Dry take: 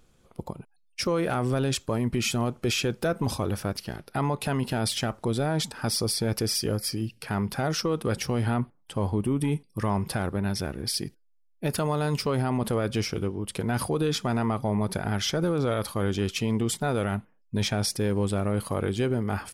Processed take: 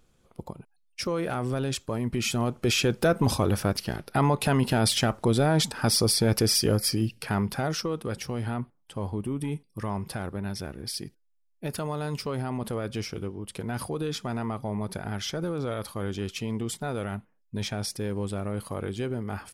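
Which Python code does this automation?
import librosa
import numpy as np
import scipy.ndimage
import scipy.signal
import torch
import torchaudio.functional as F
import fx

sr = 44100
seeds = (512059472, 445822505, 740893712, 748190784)

y = fx.gain(x, sr, db=fx.line((1.96, -3.0), (3.03, 4.0), (7.08, 4.0), (8.08, -5.0)))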